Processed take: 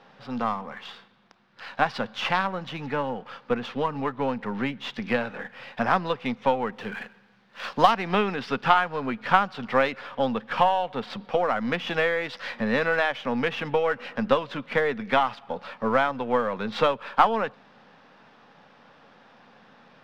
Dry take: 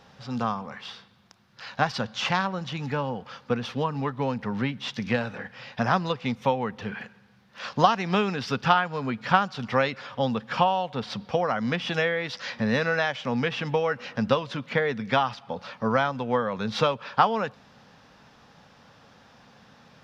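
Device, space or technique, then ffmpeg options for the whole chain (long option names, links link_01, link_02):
crystal radio: -filter_complex "[0:a]highpass=210,lowpass=3200,aeval=exprs='if(lt(val(0),0),0.708*val(0),val(0))':channel_layout=same,asettb=1/sr,asplit=3[link_01][link_02][link_03];[link_01]atrim=end=6.724[link_04];[link_02]atrim=start=6.72:end=7.94,asetpts=PTS-STARTPTS,afade=type=in:duration=0.004:curve=qsin,afade=type=out:start_time=1.216:duration=0.004:curve=qsin,aemphasis=mode=production:type=cd[link_05];[link_03]atrim=start=7.936[link_06];[link_04][link_05]acrossfade=duration=0.004:curve1=hsin:curve2=qsin[link_07];[link_07][link_06]acrossfade=duration=0.004:curve1=qsin:curve2=hsin,volume=3dB"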